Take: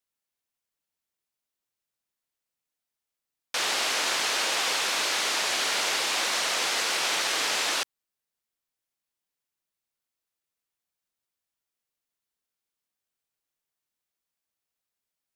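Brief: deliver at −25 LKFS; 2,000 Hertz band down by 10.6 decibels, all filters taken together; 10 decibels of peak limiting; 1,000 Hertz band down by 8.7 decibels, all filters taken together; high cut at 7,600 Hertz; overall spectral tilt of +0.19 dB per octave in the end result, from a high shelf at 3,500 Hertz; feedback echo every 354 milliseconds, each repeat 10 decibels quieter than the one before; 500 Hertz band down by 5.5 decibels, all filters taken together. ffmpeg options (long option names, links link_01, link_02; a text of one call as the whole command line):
ffmpeg -i in.wav -af "lowpass=7600,equalizer=frequency=500:width_type=o:gain=-4,equalizer=frequency=1000:width_type=o:gain=-6.5,equalizer=frequency=2000:width_type=o:gain=-9,highshelf=frequency=3500:gain=-8.5,alimiter=level_in=8.5dB:limit=-24dB:level=0:latency=1,volume=-8.5dB,aecho=1:1:354|708|1062|1416:0.316|0.101|0.0324|0.0104,volume=14.5dB" out.wav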